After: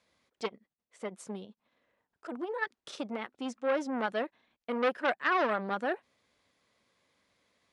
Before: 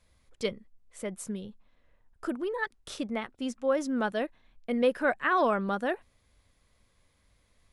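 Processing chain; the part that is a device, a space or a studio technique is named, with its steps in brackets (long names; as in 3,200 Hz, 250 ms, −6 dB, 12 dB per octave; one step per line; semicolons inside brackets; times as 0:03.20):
public-address speaker with an overloaded transformer (saturating transformer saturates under 1,300 Hz; band-pass filter 220–6,700 Hz)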